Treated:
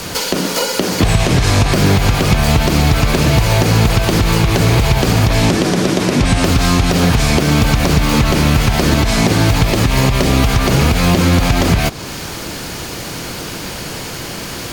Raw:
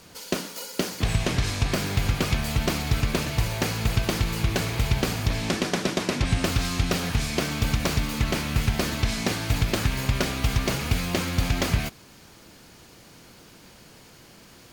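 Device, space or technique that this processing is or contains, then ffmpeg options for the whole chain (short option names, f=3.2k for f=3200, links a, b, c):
mastering chain: -filter_complex "[0:a]equalizer=f=220:t=o:w=0.29:g=-3.5,acrossover=split=470|1200|3300|7200[a][b][c][d][e];[a]acompressor=threshold=-30dB:ratio=4[f];[b]acompressor=threshold=-42dB:ratio=4[g];[c]acompressor=threshold=-48dB:ratio=4[h];[d]acompressor=threshold=-48dB:ratio=4[i];[e]acompressor=threshold=-53dB:ratio=4[j];[f][g][h][i][j]amix=inputs=5:normalize=0,acompressor=threshold=-33dB:ratio=2,alimiter=level_in=25.5dB:limit=-1dB:release=50:level=0:latency=1,asettb=1/sr,asplit=3[k][l][m];[k]atrim=end=9.634[n];[l]atrim=start=9.63:end=10.4,asetpts=PTS-STARTPTS,afade=t=in:d=0.004:c=qsin,afade=t=out:st=0.766:d=0.004:c=qsin,bandreject=f=1.5k:w=8.9[o];[m]atrim=start=10.396[p];[n][o]acrossfade=d=0.004:c1=hsin:c2=qsin[q];[q][p]acrossfade=d=0.004:c1=qsin:c2=hsin,volume=-1dB"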